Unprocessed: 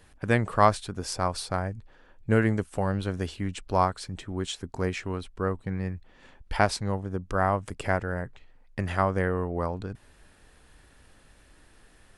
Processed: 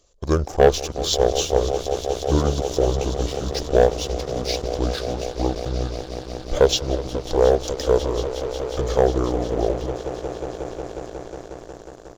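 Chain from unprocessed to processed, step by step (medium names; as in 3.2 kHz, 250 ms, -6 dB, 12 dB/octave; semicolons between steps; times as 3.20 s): pitch shift -7 st; graphic EQ 125/250/500/1000/2000/4000/8000 Hz -7/-9/+10/-8/-11/+7/+7 dB; on a send: echo with a slow build-up 181 ms, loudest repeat 5, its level -15.5 dB; on the sum: waveshaping leveller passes 2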